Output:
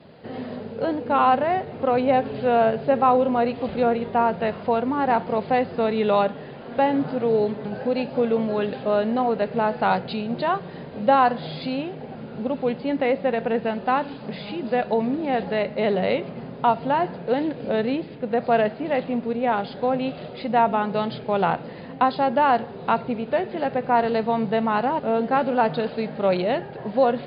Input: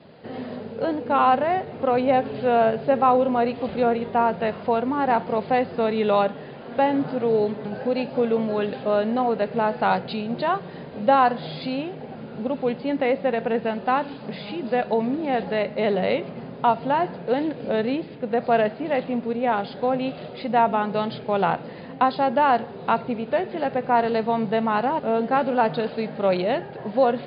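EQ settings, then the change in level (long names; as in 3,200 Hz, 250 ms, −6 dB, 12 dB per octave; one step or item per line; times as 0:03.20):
low-shelf EQ 69 Hz +6.5 dB
0.0 dB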